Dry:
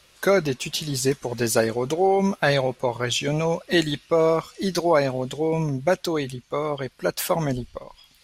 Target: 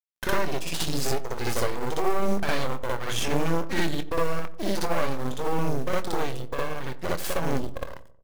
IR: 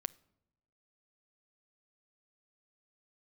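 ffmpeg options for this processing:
-filter_complex "[0:a]highshelf=frequency=2800:gain=-5,acompressor=threshold=-34dB:ratio=3,aeval=exprs='0.106*(cos(1*acos(clip(val(0)/0.106,-1,1)))-cos(1*PI/2))+0.0266*(cos(2*acos(clip(val(0)/0.106,-1,1)))-cos(2*PI/2))+0.00299*(cos(3*acos(clip(val(0)/0.106,-1,1)))-cos(3*PI/2))+0.00237*(cos(5*acos(clip(val(0)/0.106,-1,1)))-cos(5*PI/2))+0.0266*(cos(6*acos(clip(val(0)/0.106,-1,1)))-cos(6*PI/2))':channel_layout=same,aeval=exprs='sgn(val(0))*max(abs(val(0))-0.00596,0)':channel_layout=same,acrusher=bits=5:mode=log:mix=0:aa=0.000001,asplit=2[link_01][link_02];[link_02]adelay=24,volume=-12dB[link_03];[link_01][link_03]amix=inputs=2:normalize=0,asplit=2[link_04][link_05];[link_05]adelay=90,lowpass=frequency=950:poles=1,volume=-14.5dB,asplit=2[link_06][link_07];[link_07]adelay=90,lowpass=frequency=950:poles=1,volume=0.52,asplit=2[link_08][link_09];[link_09]adelay=90,lowpass=frequency=950:poles=1,volume=0.52,asplit=2[link_10][link_11];[link_11]adelay=90,lowpass=frequency=950:poles=1,volume=0.52,asplit=2[link_12][link_13];[link_13]adelay=90,lowpass=frequency=950:poles=1,volume=0.52[link_14];[link_04][link_06][link_08][link_10][link_12][link_14]amix=inputs=6:normalize=0,asplit=2[link_15][link_16];[1:a]atrim=start_sample=2205,afade=type=out:start_time=0.29:duration=0.01,atrim=end_sample=13230,adelay=60[link_17];[link_16][link_17]afir=irnorm=-1:irlink=0,volume=5dB[link_18];[link_15][link_18]amix=inputs=2:normalize=0"

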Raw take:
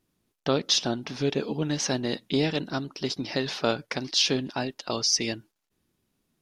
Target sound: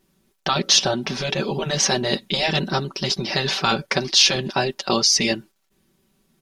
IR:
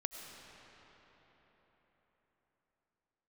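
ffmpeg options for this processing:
-af "afftfilt=real='re*lt(hypot(re,im),0.251)':imag='im*lt(hypot(re,im),0.251)':win_size=1024:overlap=0.75,aecho=1:1:5.2:0.67,volume=8.5dB"

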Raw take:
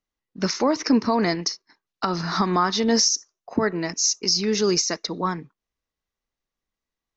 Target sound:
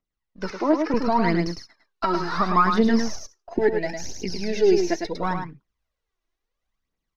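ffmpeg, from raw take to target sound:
ffmpeg -i in.wav -filter_complex "[0:a]aeval=exprs='if(lt(val(0),0),0.708*val(0),val(0))':channel_layout=same,aphaser=in_gain=1:out_gain=1:delay=3.2:decay=0.66:speed=0.72:type=triangular,highshelf=frequency=6800:gain=-9.5,asplit=2[link_01][link_02];[link_02]adelay=105,volume=-6dB,highshelf=frequency=4000:gain=-2.36[link_03];[link_01][link_03]amix=inputs=2:normalize=0,acrossover=split=2800[link_04][link_05];[link_05]acompressor=threshold=-38dB:ratio=4:attack=1:release=60[link_06];[link_04][link_06]amix=inputs=2:normalize=0,asettb=1/sr,asplit=3[link_07][link_08][link_09];[link_07]atrim=end=0.504[link_10];[link_08]atrim=start=0.5:end=0.94,asetpts=PTS-STARTPTS,afade=type=in:duration=0.004:curve=qsin,afade=type=out:start_time=0.436:duration=0.004:curve=qsin,acrossover=split=200 4500:gain=0.2 1 0.251[link_11][link_12][link_13];[link_11][link_12][link_13]amix=inputs=3:normalize=0[link_14];[link_09]atrim=start=0.936[link_15];[link_10][link_14]acrossfade=duration=0.004:curve1=hsin:curve2=qsin[link_16];[link_16][link_15]acrossfade=duration=0.004:curve1=qsin:curve2=hsin,dynaudnorm=framelen=450:gausssize=3:maxgain=6dB,asettb=1/sr,asplit=3[link_17][link_18][link_19];[link_17]atrim=end=3.534[link_20];[link_18]atrim=start=3.53:end=5.16,asetpts=PTS-STARTPTS,afade=type=in:duration=0.004:curve=qsin,afade=type=out:start_time=1.626:duration=0.004:curve=qsin,asuperstop=centerf=1200:order=4:qfactor=1.8[link_21];[link_19]atrim=start=5.156[link_22];[link_20][link_21]acrossfade=duration=0.004:curve1=hsin:curve2=qsin[link_23];[link_23][link_22]acrossfade=duration=0.004:curve1=qsin:curve2=hsin,volume=-4dB" out.wav

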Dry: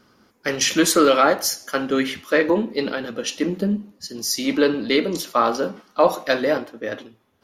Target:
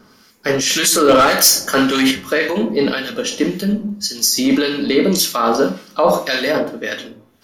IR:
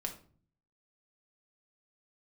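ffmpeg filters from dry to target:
-filter_complex "[0:a]asplit=2[link_01][link_02];[1:a]atrim=start_sample=2205,highshelf=frequency=2600:gain=11.5[link_03];[link_02][link_03]afir=irnorm=-1:irlink=0,volume=3.5dB[link_04];[link_01][link_04]amix=inputs=2:normalize=0,asettb=1/sr,asplit=3[link_05][link_06][link_07];[link_05]atrim=end=1.084[link_08];[link_06]atrim=start=1.08:end=2.11,asetpts=PTS-STARTPTS,afade=type=in:duration=0.004:curve=qsin,afade=type=out:start_time=1.026:duration=0.004:curve=qsin,acontrast=75[link_09];[link_07]atrim=start=2.106[link_10];[link_08][link_09]acrossfade=duration=0.004:curve1=hsin:curve2=qsin[link_11];[link_11][link_10]acrossfade=duration=0.004:curve1=qsin:curve2=hsin,alimiter=limit=-5dB:level=0:latency=1:release=24,acrossover=split=1500[link_12][link_13];[link_12]aeval=exprs='val(0)*(1-0.7/2+0.7/2*cos(2*PI*1.8*n/s))':channel_layout=same[link_14];[link_13]aeval=exprs='val(0)*(1-0.7/2-0.7/2*cos(2*PI*1.8*n/s))':channel_layout=same[link_15];[link_14][link_15]amix=inputs=2:normalize=0,volume=2dB"

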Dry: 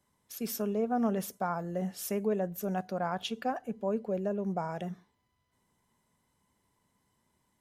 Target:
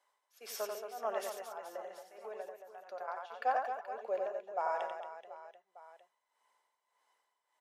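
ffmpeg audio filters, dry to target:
ffmpeg -i in.wav -filter_complex "[0:a]highpass=frequency=580:width=0.5412,highpass=frequency=580:width=1.3066,aemphasis=mode=reproduction:type=50kf,asettb=1/sr,asplit=3[link_01][link_02][link_03];[link_01]atrim=end=1.594[link_04];[link_02]atrim=start=1.59:end=3.08,asetpts=PTS-STARTPTS,afade=type=in:duration=0.004:curve=qsin,afade=type=out:start_time=1.486:duration=0.004:curve=qsin,acompressor=threshold=-46dB:ratio=5[link_05];[link_03]atrim=start=3.076[link_06];[link_04][link_05]acrossfade=duration=0.004:curve1=hsin:curve2=qsin[link_07];[link_07][link_06]acrossfade=duration=0.004:curve1=qsin:curve2=hsin,tremolo=f=1.7:d=0.96,asplit=2[link_08][link_09];[link_09]aecho=0:1:90|225|427.5|731.2|1187:0.631|0.398|0.251|0.158|0.1[link_10];[link_08][link_10]amix=inputs=2:normalize=0,volume=3.5dB" out.wav

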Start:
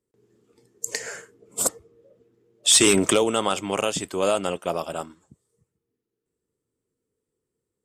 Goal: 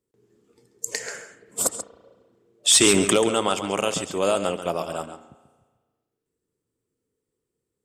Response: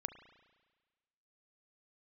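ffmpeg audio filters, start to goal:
-filter_complex "[0:a]asplit=2[link_01][link_02];[link_02]lowpass=frequency=9400:width=0.5412,lowpass=frequency=9400:width=1.3066[link_03];[1:a]atrim=start_sample=2205,adelay=136[link_04];[link_03][link_04]afir=irnorm=-1:irlink=0,volume=-7.5dB[link_05];[link_01][link_05]amix=inputs=2:normalize=0"

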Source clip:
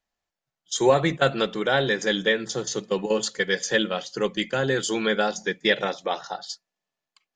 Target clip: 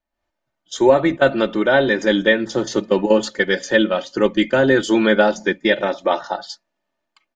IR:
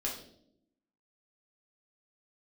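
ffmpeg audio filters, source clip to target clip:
-af "lowpass=frequency=1400:poles=1,aecho=1:1:3.3:0.6,dynaudnorm=framelen=120:gausssize=3:maxgain=11dB"

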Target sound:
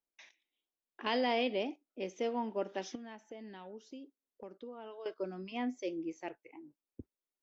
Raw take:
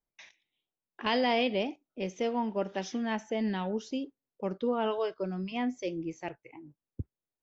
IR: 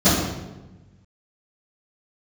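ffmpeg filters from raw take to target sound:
-filter_complex "[0:a]lowshelf=frequency=200:width_type=q:width=1.5:gain=-9.5,asettb=1/sr,asplit=3[link_01][link_02][link_03];[link_01]atrim=end=2.954[link_04];[link_02]atrim=start=2.95:end=5.06,asetpts=PTS-STARTPTS,afade=type=in:duration=0.004:curve=qsin,afade=type=out:start_time=2.106:duration=0.004:curve=qsin,acompressor=threshold=-44dB:ratio=3[link_05];[link_03]atrim=start=5.056[link_06];[link_04][link_05]acrossfade=duration=0.004:curve1=hsin:curve2=qsin[link_07];[link_07][link_06]acrossfade=duration=0.004:curve1=qsin:curve2=hsin,volume=-5dB"

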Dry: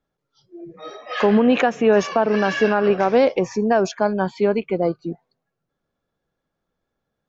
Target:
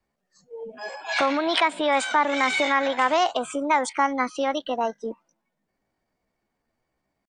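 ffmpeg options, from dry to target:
ffmpeg -i in.wav -filter_complex "[0:a]adynamicequalizer=threshold=0.02:dfrequency=210:dqfactor=3.4:tfrequency=210:tqfactor=3.4:attack=5:release=100:ratio=0.375:range=1.5:mode=boostabove:tftype=bell,acrossover=split=650[link_01][link_02];[link_01]acompressor=threshold=-29dB:ratio=5[link_03];[link_03][link_02]amix=inputs=2:normalize=0,asetrate=58866,aresample=44100,atempo=0.749154,volume=1dB" out.wav

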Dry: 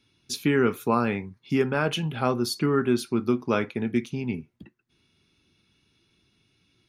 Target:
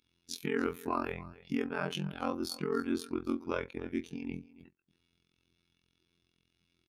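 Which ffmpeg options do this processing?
ffmpeg -i in.wav -af "aecho=1:1:284:0.112,afftfilt=real='hypot(re,im)*cos(PI*b)':imag='0':win_size=2048:overlap=0.75,aeval=exprs='val(0)*sin(2*PI*22*n/s)':channel_layout=same,volume=-3.5dB" out.wav

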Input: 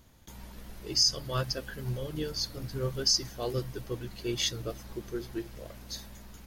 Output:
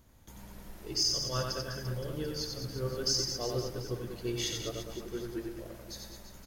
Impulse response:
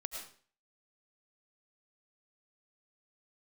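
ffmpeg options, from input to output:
-filter_complex "[0:a]equalizer=frequency=3500:width=0.95:gain=-4,asoftclip=type=hard:threshold=-18.5dB,aecho=1:1:90|202.5|343.1|518.9|738.6:0.631|0.398|0.251|0.158|0.1,asplit=2[link_01][link_02];[1:a]atrim=start_sample=2205[link_03];[link_02][link_03]afir=irnorm=-1:irlink=0,volume=-8dB[link_04];[link_01][link_04]amix=inputs=2:normalize=0,volume=-5dB"

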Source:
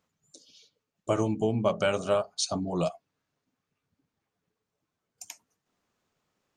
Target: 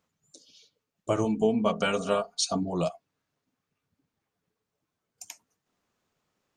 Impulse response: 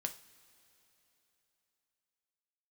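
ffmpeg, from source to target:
-filter_complex "[0:a]asettb=1/sr,asplit=3[link_01][link_02][link_03];[link_01]atrim=end=1.244[link_04];[link_02]atrim=start=1.24:end=2.63,asetpts=PTS-STARTPTS,afade=type=in:duration=0.004:curve=qsin,afade=type=out:start_time=1.386:duration=0.004:curve=qsin,aecho=1:1:4.3:0.74,atrim=end_sample=61299[link_05];[link_03]atrim=start=2.626[link_06];[link_04][link_05]acrossfade=duration=0.004:curve1=hsin:curve2=qsin[link_07];[link_07][link_06]acrossfade=duration=0.004:curve1=qsin:curve2=hsin"

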